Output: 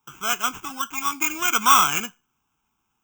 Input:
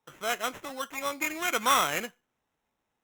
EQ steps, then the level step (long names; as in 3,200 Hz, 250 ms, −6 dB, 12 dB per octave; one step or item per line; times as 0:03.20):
parametric band 1,400 Hz +2 dB
high-shelf EQ 8,700 Hz +11 dB
phaser with its sweep stopped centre 2,800 Hz, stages 8
+7.5 dB